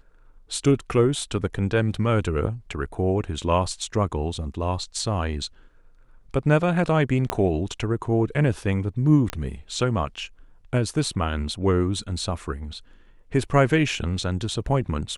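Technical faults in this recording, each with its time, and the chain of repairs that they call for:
0:07.30: click −8 dBFS
0:09.30: click −12 dBFS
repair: click removal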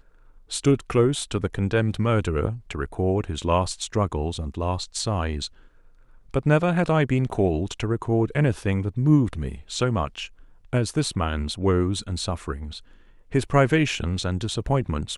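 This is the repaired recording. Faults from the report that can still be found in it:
0:07.30: click

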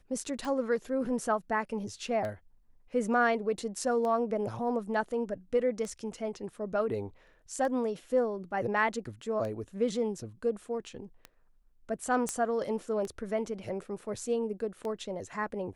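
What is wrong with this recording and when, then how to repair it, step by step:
scratch tick 33 1/3 rpm
0:12.29: click −18 dBFS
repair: click removal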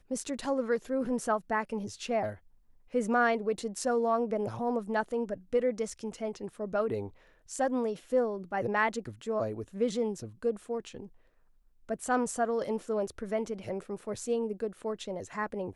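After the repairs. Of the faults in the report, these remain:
none of them is left

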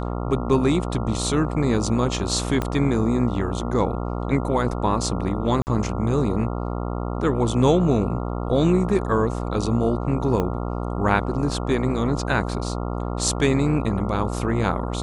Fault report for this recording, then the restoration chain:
mains buzz 60 Hz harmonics 23 −27 dBFS
0:02.62: click −11 dBFS
0:05.62–0:05.67: drop-out 49 ms
0:10.40: click −12 dBFS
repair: click removal
hum removal 60 Hz, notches 23
repair the gap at 0:05.62, 49 ms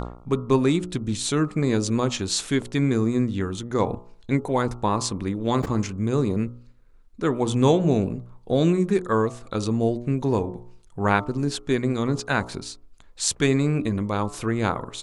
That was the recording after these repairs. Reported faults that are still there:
0:02.62: click
0:10.40: click

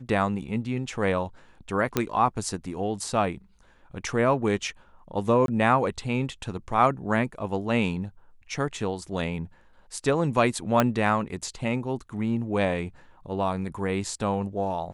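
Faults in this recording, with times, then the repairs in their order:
0:01.97: click −8 dBFS
0:05.46–0:05.48: drop-out 22 ms
0:10.80: click −7 dBFS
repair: click removal
repair the gap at 0:05.46, 22 ms

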